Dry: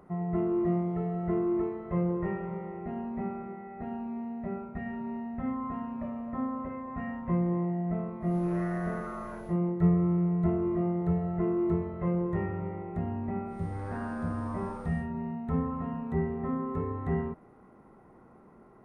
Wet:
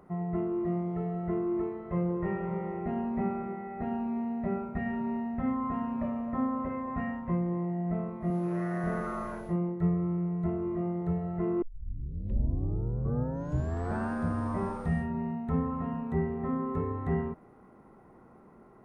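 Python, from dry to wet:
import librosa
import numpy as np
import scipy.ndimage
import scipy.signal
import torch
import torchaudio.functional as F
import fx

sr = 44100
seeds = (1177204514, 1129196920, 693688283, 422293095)

y = fx.highpass(x, sr, hz=110.0, slope=12, at=(8.3, 8.84))
y = fx.edit(y, sr, fx.tape_start(start_s=11.62, length_s=2.5), tone=tone)
y = fx.rider(y, sr, range_db=4, speed_s=0.5)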